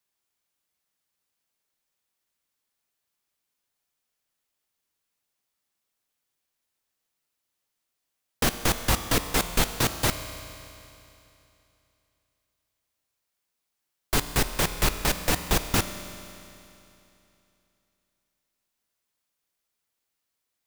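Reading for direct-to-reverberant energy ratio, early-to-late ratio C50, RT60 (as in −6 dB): 9.0 dB, 10.0 dB, 2.9 s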